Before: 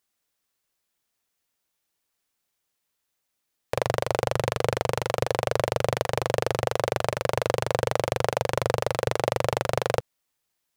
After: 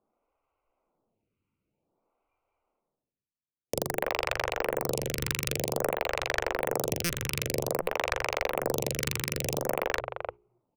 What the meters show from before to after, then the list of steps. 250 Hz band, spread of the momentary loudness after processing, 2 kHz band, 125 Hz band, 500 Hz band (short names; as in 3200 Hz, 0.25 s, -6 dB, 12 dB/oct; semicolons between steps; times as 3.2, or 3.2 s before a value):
-0.5 dB, 3 LU, -0.5 dB, -6.5 dB, -6.0 dB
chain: Wiener smoothing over 25 samples; notches 60/120/180/240/300/360/420 Hz; reverse; upward compressor, threshold -46 dBFS; reverse; LPF 2600 Hz 24 dB/oct; echo 0.305 s -10 dB; limiter -11.5 dBFS, peak gain reduction 5.5 dB; notch 1700 Hz, Q 5.8; spectral noise reduction 13 dB; wrapped overs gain 16.5 dB; stuck buffer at 7.04/7.82, samples 256, times 8; photocell phaser 0.52 Hz; gain +3 dB